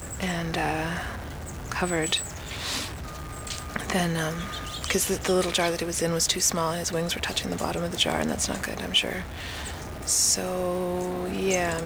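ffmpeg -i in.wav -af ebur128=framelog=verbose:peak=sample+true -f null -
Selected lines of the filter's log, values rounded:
Integrated loudness:
  I:         -26.6 LUFS
  Threshold: -36.7 LUFS
Loudness range:
  LRA:         4.2 LU
  Threshold: -46.6 LUFS
  LRA low:   -29.3 LUFS
  LRA high:  -25.2 LUFS
Sample peak:
  Peak:       -9.1 dBFS
True peak:
  Peak:       -8.9 dBFS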